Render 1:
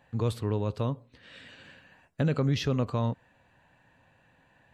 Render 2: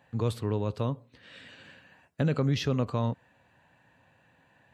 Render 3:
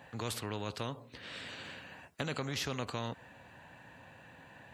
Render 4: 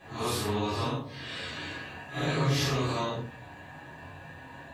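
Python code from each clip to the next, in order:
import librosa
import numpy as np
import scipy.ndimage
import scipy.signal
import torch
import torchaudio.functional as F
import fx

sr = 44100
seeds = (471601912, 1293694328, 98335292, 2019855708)

y1 = scipy.signal.sosfilt(scipy.signal.butter(2, 72.0, 'highpass', fs=sr, output='sos'), x)
y2 = fx.spectral_comp(y1, sr, ratio=2.0)
y2 = y2 * librosa.db_to_amplitude(-4.0)
y3 = fx.phase_scramble(y2, sr, seeds[0], window_ms=200)
y3 = fx.room_shoebox(y3, sr, seeds[1], volume_m3=180.0, walls='furnished', distance_m=3.8)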